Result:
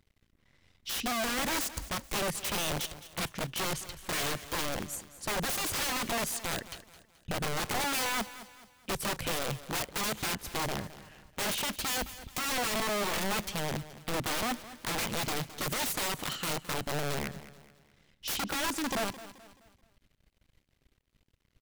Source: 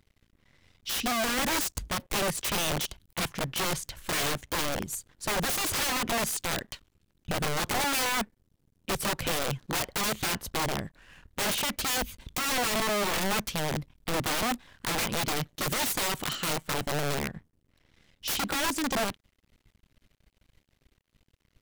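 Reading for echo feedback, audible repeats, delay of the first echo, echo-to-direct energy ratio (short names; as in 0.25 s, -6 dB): 40%, 3, 0.215 s, -14.5 dB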